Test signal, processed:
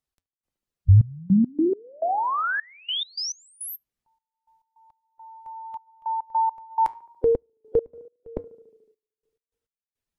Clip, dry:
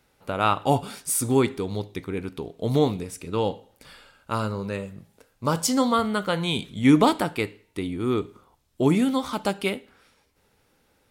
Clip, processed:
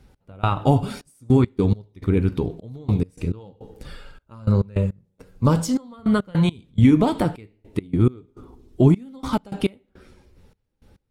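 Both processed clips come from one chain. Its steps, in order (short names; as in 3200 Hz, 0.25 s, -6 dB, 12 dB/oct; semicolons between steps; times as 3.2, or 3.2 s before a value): bin magnitudes rounded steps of 15 dB; high shelf 4500 Hz +11.5 dB; compressor 6:1, threshold -22 dBFS; RIAA curve playback; flange 0.24 Hz, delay 5 ms, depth 5.6 ms, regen -84%; tape echo 73 ms, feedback 80%, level -22 dB, low-pass 1200 Hz; step gate "x..xxxx..x." 104 bpm -24 dB; gain +8.5 dB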